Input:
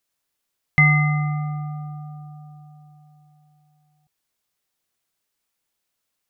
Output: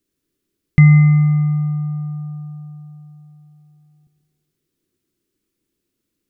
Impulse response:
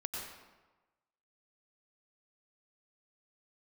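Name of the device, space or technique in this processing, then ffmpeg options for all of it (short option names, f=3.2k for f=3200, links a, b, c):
ducked reverb: -filter_complex "[0:a]acrossover=split=2500[a][b];[b]acompressor=threshold=-32dB:ratio=4:attack=1:release=60[c];[a][c]amix=inputs=2:normalize=0,lowshelf=f=500:t=q:w=3:g=13,asplit=3[d][e][f];[1:a]atrim=start_sample=2205[g];[e][g]afir=irnorm=-1:irlink=0[h];[f]apad=whole_len=277570[i];[h][i]sidechaincompress=threshold=-20dB:ratio=8:attack=16:release=390,volume=-3dB[j];[d][j]amix=inputs=2:normalize=0,volume=-5dB"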